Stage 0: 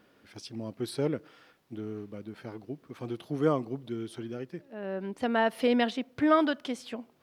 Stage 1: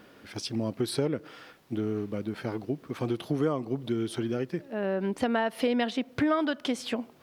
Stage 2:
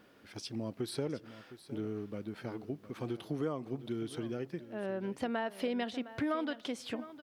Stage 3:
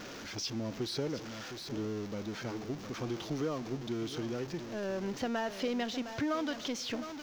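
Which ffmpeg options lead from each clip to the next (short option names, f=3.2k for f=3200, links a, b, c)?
-af "acompressor=threshold=-34dB:ratio=4,volume=9dB"
-af "aecho=1:1:711:0.178,volume=-8dB"
-af "aeval=exprs='val(0)+0.5*0.0106*sgn(val(0))':c=same,highshelf=f=7.4k:t=q:w=3:g=-7.5,volume=-1dB"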